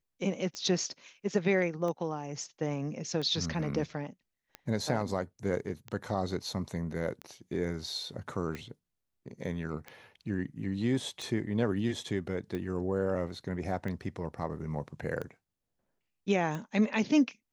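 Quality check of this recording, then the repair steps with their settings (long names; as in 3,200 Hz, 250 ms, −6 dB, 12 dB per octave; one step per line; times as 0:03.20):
scratch tick 45 rpm −25 dBFS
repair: click removal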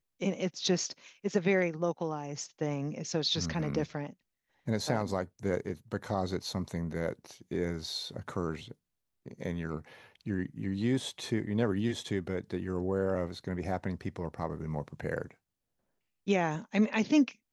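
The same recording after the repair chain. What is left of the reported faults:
none of them is left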